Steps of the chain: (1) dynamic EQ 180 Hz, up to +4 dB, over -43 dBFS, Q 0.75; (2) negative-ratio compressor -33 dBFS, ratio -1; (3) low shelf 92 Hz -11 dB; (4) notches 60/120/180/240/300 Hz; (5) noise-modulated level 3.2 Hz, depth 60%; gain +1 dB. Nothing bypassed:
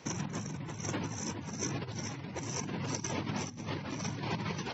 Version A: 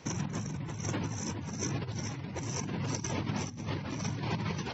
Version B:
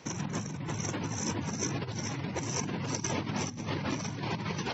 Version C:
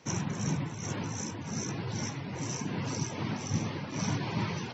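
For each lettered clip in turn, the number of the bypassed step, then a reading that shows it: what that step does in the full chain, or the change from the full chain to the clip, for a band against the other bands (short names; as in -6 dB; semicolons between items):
3, 125 Hz band +3.5 dB; 5, momentary loudness spread change -1 LU; 2, crest factor change -2.0 dB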